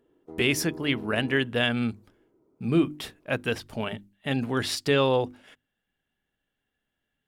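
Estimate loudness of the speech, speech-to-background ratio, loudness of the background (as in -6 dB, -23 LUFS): -27.0 LUFS, 16.0 dB, -43.0 LUFS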